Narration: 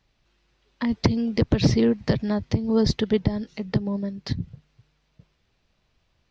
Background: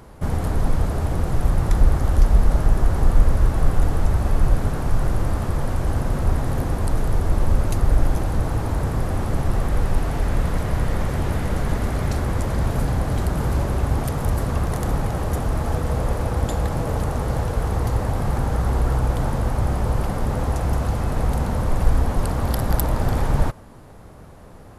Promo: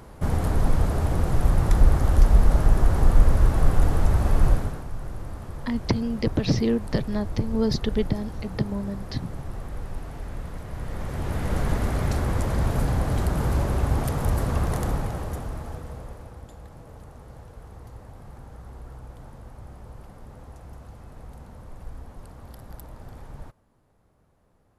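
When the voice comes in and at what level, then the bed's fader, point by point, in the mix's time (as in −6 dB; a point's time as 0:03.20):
4.85 s, −3.0 dB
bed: 0:04.50 −1 dB
0:04.88 −13.5 dB
0:10.67 −13.5 dB
0:11.57 −2 dB
0:14.77 −2 dB
0:16.48 −21.5 dB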